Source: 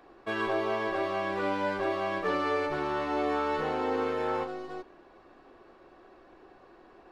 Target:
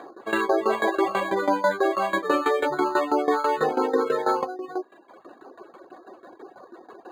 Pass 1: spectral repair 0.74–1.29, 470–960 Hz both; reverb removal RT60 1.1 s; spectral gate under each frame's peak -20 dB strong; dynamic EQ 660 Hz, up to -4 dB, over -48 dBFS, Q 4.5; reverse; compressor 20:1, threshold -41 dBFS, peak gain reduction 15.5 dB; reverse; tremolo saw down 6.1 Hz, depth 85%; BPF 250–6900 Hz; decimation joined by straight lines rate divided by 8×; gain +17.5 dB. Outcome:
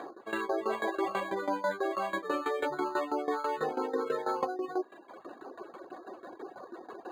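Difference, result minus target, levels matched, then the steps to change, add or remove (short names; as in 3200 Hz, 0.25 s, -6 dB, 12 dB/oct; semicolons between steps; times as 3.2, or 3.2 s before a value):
compressor: peak gain reduction +10 dB
change: compressor 20:1, threshold -30.5 dBFS, peak gain reduction 5.5 dB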